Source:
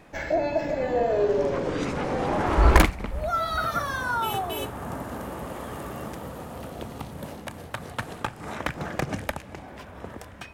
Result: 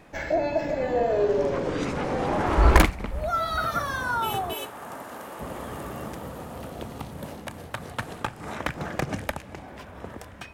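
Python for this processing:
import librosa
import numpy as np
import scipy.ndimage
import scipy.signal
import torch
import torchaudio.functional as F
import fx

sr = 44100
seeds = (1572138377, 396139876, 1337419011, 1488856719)

y = fx.highpass(x, sr, hz=650.0, slope=6, at=(4.54, 5.4))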